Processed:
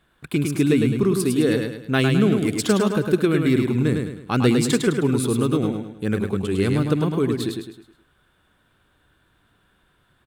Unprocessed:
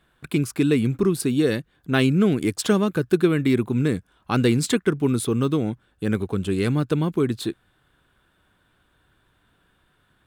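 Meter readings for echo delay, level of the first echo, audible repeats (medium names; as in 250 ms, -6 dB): 105 ms, -4.5 dB, 4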